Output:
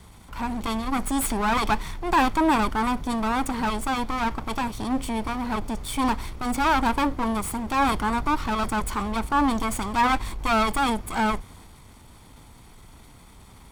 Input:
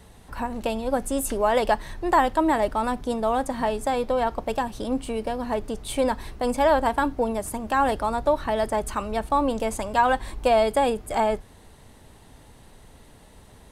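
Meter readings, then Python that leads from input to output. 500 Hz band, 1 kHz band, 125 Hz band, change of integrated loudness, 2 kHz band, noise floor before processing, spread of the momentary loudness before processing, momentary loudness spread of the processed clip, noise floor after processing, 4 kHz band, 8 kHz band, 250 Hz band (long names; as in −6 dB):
−9.0 dB, 0.0 dB, +4.0 dB, −0.5 dB, +2.5 dB, −51 dBFS, 8 LU, 8 LU, −49 dBFS, +3.5 dB, +2.0 dB, +2.5 dB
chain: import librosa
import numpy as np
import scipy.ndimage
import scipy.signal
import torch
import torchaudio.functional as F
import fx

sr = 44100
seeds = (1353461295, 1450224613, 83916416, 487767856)

y = fx.lower_of_two(x, sr, delay_ms=0.89)
y = fx.transient(y, sr, attack_db=-4, sustain_db=3)
y = y * librosa.db_to_amplitude(2.5)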